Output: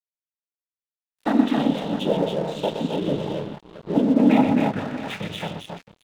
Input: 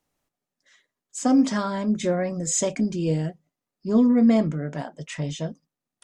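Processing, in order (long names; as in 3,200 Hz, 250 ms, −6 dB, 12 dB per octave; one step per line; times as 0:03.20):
time-frequency box erased 0:01.54–0:04.19, 850–2,800 Hz
cochlear-implant simulation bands 12
drawn EQ curve 150 Hz 0 dB, 3,600 Hz +12 dB, 5,400 Hz −26 dB
on a send: multi-tap delay 90/122/133/268/296/666 ms −16.5/−7.5/−17/−5.5/−7/−12 dB
on the sum: dead-zone distortion −34.5 dBFS
level −3 dB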